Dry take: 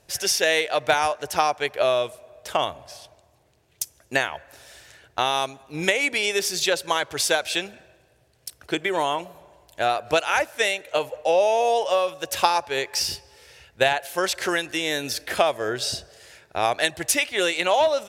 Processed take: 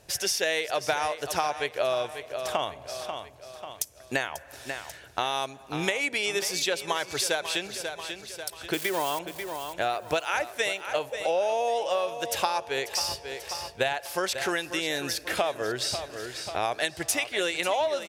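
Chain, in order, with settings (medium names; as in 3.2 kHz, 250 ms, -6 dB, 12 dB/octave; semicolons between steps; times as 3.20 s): 8.73–9.19 s: zero-crossing glitches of -20.5 dBFS; on a send: feedback delay 540 ms, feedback 42%, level -13.5 dB; on the sum: compression 2:1, threshold -34 dBFS, peak gain reduction 11.5 dB; trim +3 dB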